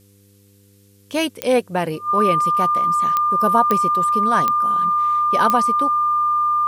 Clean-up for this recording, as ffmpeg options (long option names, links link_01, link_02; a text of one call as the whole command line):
ffmpeg -i in.wav -af "adeclick=threshold=4,bandreject=frequency=99.8:width_type=h:width=4,bandreject=frequency=199.6:width_type=h:width=4,bandreject=frequency=299.4:width_type=h:width=4,bandreject=frequency=399.2:width_type=h:width=4,bandreject=frequency=499:width_type=h:width=4,bandreject=frequency=1200:width=30,agate=range=-21dB:threshold=-44dB" out.wav